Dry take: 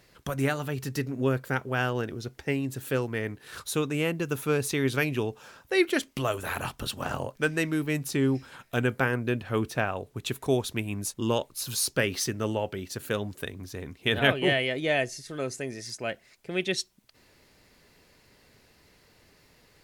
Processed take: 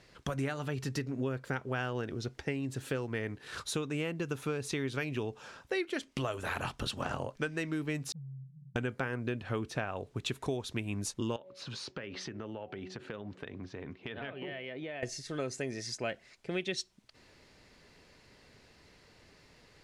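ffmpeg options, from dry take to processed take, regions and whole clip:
ffmpeg -i in.wav -filter_complex "[0:a]asettb=1/sr,asplit=3[link_01][link_02][link_03];[link_01]atrim=end=8.124[link_04];[link_02]atrim=start=8.12:end=8.76,asetpts=PTS-STARTPTS,afade=type=in:duration=0.004:curve=qsin,afade=type=out:start_time=0.636:duration=0.004:curve=qsin,aeval=exprs='val(0)+0.5*0.0282*sgn(val(0))':channel_layout=same,asuperpass=centerf=150:order=8:qfactor=3.8,acompressor=threshold=-44dB:ratio=6:attack=3.2:release=140:knee=1:detection=peak[link_05];[link_03]atrim=start=8.756[link_06];[link_04][link_05]acrossfade=duration=0.004:curve1=hsin:curve2=qsin[link_07];[link_07][link_06]acrossfade=duration=0.004:curve1=qsin:curve2=hsin,asettb=1/sr,asplit=3[link_08][link_09][link_10];[link_08]atrim=end=11.364[link_11];[link_09]atrim=start=11.36:end=15.03,asetpts=PTS-STARTPTS,afade=type=in:duration=0.004:curve=qsin,afade=type=out:start_time=3.666:duration=0.004:curve=qsin,highpass=120,lowpass=2900,bandreject=frequency=186.3:width_type=h:width=4,bandreject=frequency=372.6:width_type=h:width=4,bandreject=frequency=558.9:width_type=h:width=4,bandreject=frequency=745.2:width_type=h:width=4,acompressor=threshold=-37dB:ratio=10:attack=3.2:release=140:knee=1:detection=peak[link_12];[link_10]atrim=start=15.026[link_13];[link_11][link_12]acrossfade=duration=0.004:curve1=hsin:curve2=qsin[link_14];[link_14][link_13]acrossfade=duration=0.004:curve1=qsin:curve2=hsin,lowpass=7300,acompressor=threshold=-31dB:ratio=6" out.wav

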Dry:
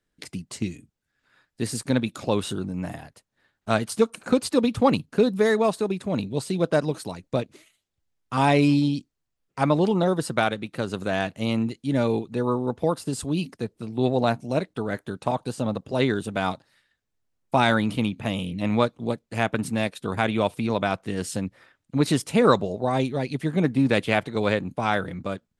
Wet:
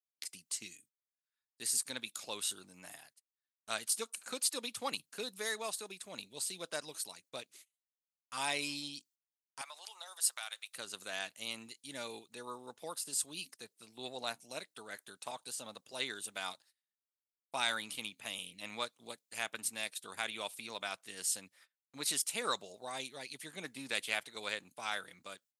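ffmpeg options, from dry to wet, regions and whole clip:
ffmpeg -i in.wav -filter_complex "[0:a]asettb=1/sr,asplit=3[link_01][link_02][link_03];[link_01]atrim=end=9.614[link_04];[link_02]atrim=start=9.61:end=10.76,asetpts=PTS-STARTPTS,afade=type=in:duration=0.004:curve=qsin,afade=type=out:start_time=1.146:duration=0.004:curve=qsin,highshelf=frequency=4800:gain=6,acompressor=threshold=-24dB:ratio=5:attack=3.2:release=140:knee=1:detection=peak,highpass=frequency=700:width=0.5412,highpass=frequency=700:width=1.3066[link_05];[link_03]atrim=start=10.756[link_06];[link_04][link_05]acrossfade=duration=0.004:curve1=hsin:curve2=qsin[link_07];[link_07][link_06]acrossfade=duration=0.004:curve1=qsin:curve2=hsin,agate=range=-23dB:threshold=-48dB:ratio=16:detection=peak,aderivative,volume=1dB" out.wav

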